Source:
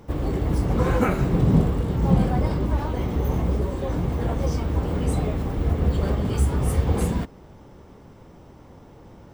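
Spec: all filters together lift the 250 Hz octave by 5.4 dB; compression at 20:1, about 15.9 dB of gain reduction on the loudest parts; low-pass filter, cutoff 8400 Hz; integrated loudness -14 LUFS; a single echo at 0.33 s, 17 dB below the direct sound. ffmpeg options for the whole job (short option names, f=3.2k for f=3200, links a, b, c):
-af "lowpass=8.4k,equalizer=f=250:t=o:g=7.5,acompressor=threshold=-24dB:ratio=20,aecho=1:1:330:0.141,volume=15.5dB"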